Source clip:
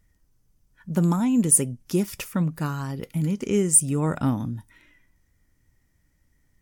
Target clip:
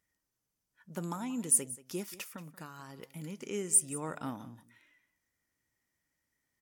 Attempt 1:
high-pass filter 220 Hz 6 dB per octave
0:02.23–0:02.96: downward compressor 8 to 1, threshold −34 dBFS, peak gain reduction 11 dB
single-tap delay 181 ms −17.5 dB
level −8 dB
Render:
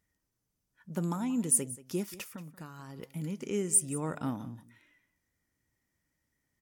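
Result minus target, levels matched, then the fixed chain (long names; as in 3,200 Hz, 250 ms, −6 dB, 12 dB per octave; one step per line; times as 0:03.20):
250 Hz band +5.0 dB
high-pass filter 580 Hz 6 dB per octave
0:02.23–0:02.96: downward compressor 8 to 1, threshold −34 dBFS, peak gain reduction 7.5 dB
single-tap delay 181 ms −17.5 dB
level −8 dB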